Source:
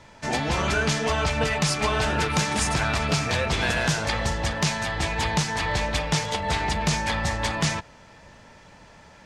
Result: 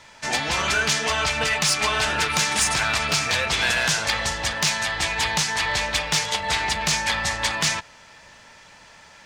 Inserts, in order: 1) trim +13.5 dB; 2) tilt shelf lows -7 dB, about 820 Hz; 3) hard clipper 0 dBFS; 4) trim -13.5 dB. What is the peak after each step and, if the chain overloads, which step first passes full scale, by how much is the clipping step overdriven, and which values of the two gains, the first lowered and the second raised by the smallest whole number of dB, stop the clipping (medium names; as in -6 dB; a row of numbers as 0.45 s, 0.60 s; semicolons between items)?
+3.5 dBFS, +9.0 dBFS, 0.0 dBFS, -13.5 dBFS; step 1, 9.0 dB; step 1 +4.5 dB, step 4 -4.5 dB